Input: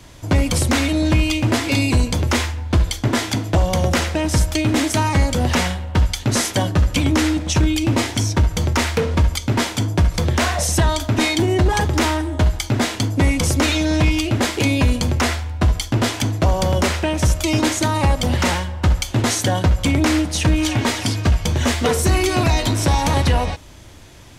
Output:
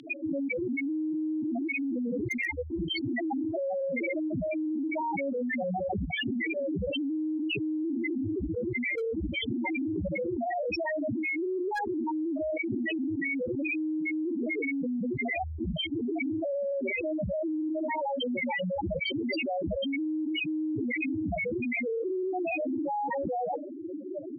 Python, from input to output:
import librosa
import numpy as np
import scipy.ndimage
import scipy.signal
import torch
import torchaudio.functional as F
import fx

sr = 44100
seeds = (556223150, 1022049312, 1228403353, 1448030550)

y = fx.lower_of_two(x, sr, delay_ms=0.41)
y = fx.bandpass_edges(y, sr, low_hz=270.0, high_hz=4500.0)
y = fx.spec_topn(y, sr, count=2)
y = fx.filter_sweep_bandpass(y, sr, from_hz=3400.0, to_hz=1300.0, start_s=1.4, end_s=3.09, q=3.8)
y = fx.rider(y, sr, range_db=4, speed_s=2.0)
y = np.clip(y, -10.0 ** (-36.5 / 20.0), 10.0 ** (-36.5 / 20.0))
y = fx.high_shelf(y, sr, hz=2100.0, db=10.0)
y = fx.env_flatten(y, sr, amount_pct=100)
y = y * 10.0 ** (4.5 / 20.0)